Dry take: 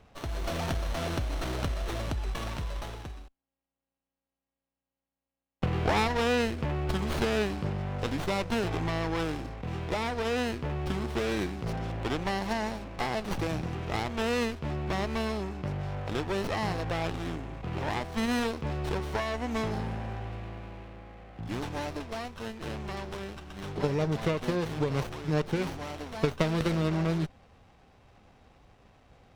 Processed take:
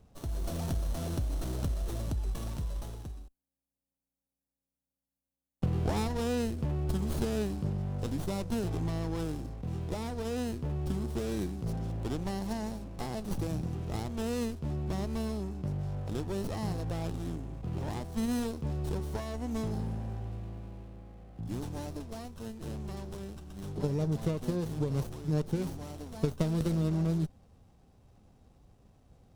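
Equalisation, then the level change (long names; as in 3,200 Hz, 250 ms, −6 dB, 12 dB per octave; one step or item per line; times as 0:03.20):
drawn EQ curve 190 Hz 0 dB, 2,200 Hz −15 dB, 10,000 Hz +2 dB
0.0 dB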